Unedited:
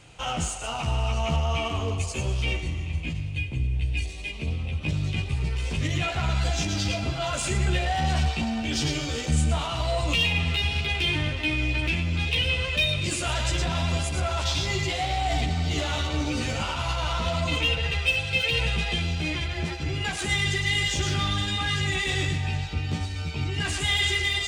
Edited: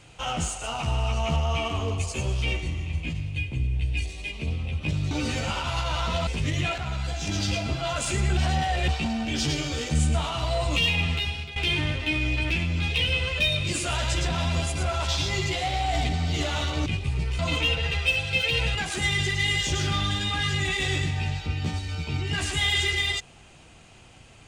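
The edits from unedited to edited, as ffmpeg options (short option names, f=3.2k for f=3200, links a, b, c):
-filter_complex "[0:a]asplit=11[a][b][c][d][e][f][g][h][i][j][k];[a]atrim=end=5.112[l];[b]atrim=start=16.228:end=17.392[m];[c]atrim=start=5.638:end=6.152[n];[d]atrim=start=6.148:end=6.642,asetpts=PTS-STARTPTS,volume=-5dB[o];[e]atrim=start=6.638:end=7.742[p];[f]atrim=start=7.738:end=8.252,asetpts=PTS-STARTPTS,areverse[q];[g]atrim=start=8.248:end=10.93,asetpts=PTS-STARTPTS,afade=t=out:st=2.212:d=0.47:silence=0.16788[r];[h]atrim=start=10.93:end=16.232,asetpts=PTS-STARTPTS,afade=t=in:d=0.004:c=hsin:silence=0.16788[s];[i]atrim=start=5.108:end=5.642[t];[j]atrim=start=17.388:end=18.752[u];[k]atrim=start=20.018[v];[l][m]acrossfade=d=0.004:c1=hsin:c2=hsin[w];[w][n]acrossfade=d=0.004:c1=hsin:c2=hsin[x];[x][o]acrossfade=d=0.004:c1=hsin:c2=hsin[y];[y][p]acrossfade=d=0.004:c1=hsin:c2=hsin[z];[z][q]acrossfade=d=0.004:c1=hsin:c2=hsin[aa];[r][s]concat=n=2:v=0:a=1[ab];[aa][ab]acrossfade=d=0.004:c1=hsin:c2=hsin[ac];[ac][t]acrossfade=d=0.004:c1=hsin:c2=hsin[ad];[ad][u]acrossfade=d=0.004:c1=hsin:c2=hsin[ae];[ae][v]acrossfade=d=0.004:c1=hsin:c2=hsin"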